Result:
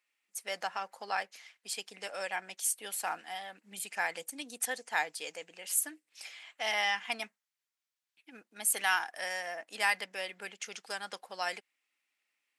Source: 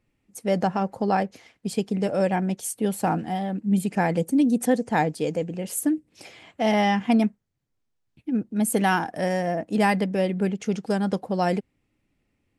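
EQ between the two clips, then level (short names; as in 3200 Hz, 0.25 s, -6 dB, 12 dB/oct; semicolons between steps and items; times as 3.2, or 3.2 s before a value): HPF 1500 Hz 12 dB/oct; 0.0 dB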